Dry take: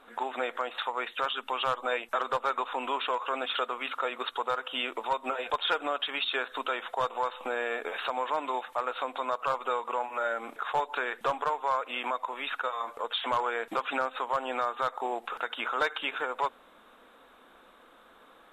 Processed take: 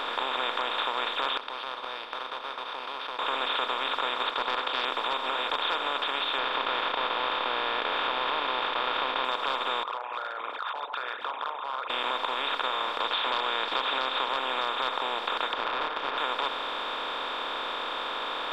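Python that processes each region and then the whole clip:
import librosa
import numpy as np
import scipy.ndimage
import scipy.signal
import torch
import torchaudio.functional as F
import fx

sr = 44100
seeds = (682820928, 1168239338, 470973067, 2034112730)

y = fx.chain(x, sr, fx.highpass(hz=430.0, slope=12),
    fx.gate_flip(shuts_db=-30.0, range_db=-34),
    fx.resample_linear(factor=6), at=(1.37, 3.19))
y = fx.chain(y, sr, fx.bandpass_edges(low_hz=240.0, high_hz=3400.0),
    fx.doppler_dist(depth_ms=0.38), at=(4.3, 4.85))
y = fx.chain(y, sr, fx.cvsd(bps=16000),
    fx.env_flatten(amount_pct=50), at=(6.38, 9.25))
y = fx.chain(y, sr, fx.envelope_sharpen(power=3.0),
    fx.ladder_bandpass(hz=1700.0, resonance_pct=40),
    fx.band_squash(depth_pct=40), at=(9.83, 11.9))
y = fx.chain(y, sr, fx.lowpass_res(hz=4400.0, q=4.7),
    fx.band_squash(depth_pct=40), at=(13.0, 14.29))
y = fx.chain(y, sr, fx.self_delay(depth_ms=0.61),
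    fx.lowpass(hz=1400.0, slope=24),
    fx.band_squash(depth_pct=70), at=(15.53, 16.18))
y = fx.bin_compress(y, sr, power=0.2)
y = fx.peak_eq(y, sr, hz=100.0, db=-13.5, octaves=2.1)
y = F.gain(torch.from_numpy(y), -8.5).numpy()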